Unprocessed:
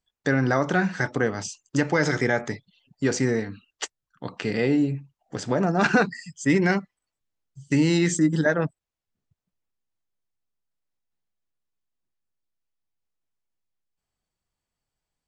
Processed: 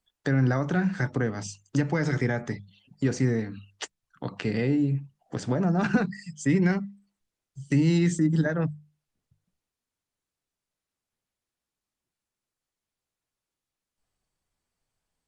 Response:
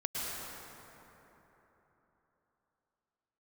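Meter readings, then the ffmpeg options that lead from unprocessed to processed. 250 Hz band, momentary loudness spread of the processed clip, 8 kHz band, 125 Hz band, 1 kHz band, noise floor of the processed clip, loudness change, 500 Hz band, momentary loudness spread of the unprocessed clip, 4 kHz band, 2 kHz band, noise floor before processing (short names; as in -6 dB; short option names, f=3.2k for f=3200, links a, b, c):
-1.5 dB, 15 LU, -7.0 dB, +2.0 dB, -7.0 dB, under -85 dBFS, -2.5 dB, -5.5 dB, 15 LU, -6.5 dB, -7.5 dB, under -85 dBFS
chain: -filter_complex "[0:a]acrossover=split=210[a][b];[b]acompressor=threshold=-40dB:ratio=2[c];[a][c]amix=inputs=2:normalize=0,bandreject=f=50:t=h:w=6,bandreject=f=100:t=h:w=6,bandreject=f=150:t=h:w=6,bandreject=f=200:t=h:w=6,volume=4dB" -ar 48000 -c:a libopus -b:a 32k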